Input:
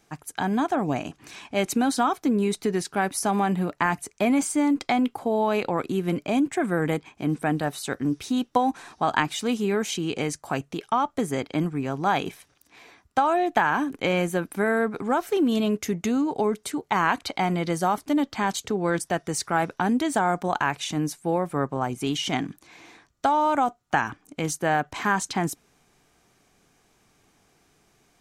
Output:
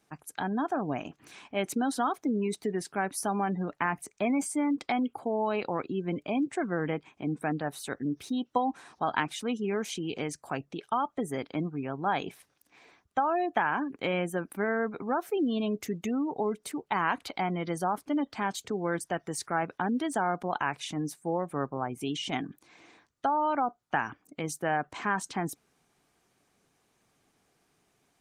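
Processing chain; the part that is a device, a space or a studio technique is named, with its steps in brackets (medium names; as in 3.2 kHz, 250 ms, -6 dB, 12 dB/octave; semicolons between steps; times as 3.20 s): 18.78–19.29 s: expander -59 dBFS; noise-suppressed video call (high-pass 110 Hz 6 dB/octave; spectral gate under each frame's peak -30 dB strong; trim -5.5 dB; Opus 24 kbps 48 kHz)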